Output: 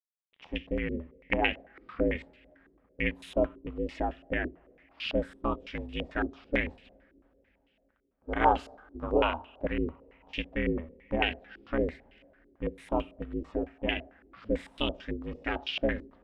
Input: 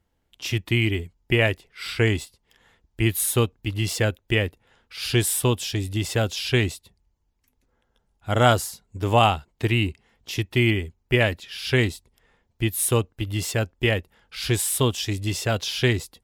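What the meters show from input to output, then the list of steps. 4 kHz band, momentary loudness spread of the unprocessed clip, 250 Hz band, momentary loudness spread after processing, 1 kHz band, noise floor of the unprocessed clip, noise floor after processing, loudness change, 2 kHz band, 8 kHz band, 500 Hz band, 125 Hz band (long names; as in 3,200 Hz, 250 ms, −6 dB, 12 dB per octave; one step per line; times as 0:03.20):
−11.5 dB, 11 LU, −6.5 dB, 10 LU, −5.0 dB, −71 dBFS, −72 dBFS, −9.0 dB, −8.5 dB, below −35 dB, −6.5 dB, −18.5 dB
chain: ring modulation 160 Hz
bit reduction 10 bits
coupled-rooms reverb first 0.37 s, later 3.8 s, from −22 dB, DRR 13 dB
low-pass on a step sequencer 9 Hz 360–2,800 Hz
level −8.5 dB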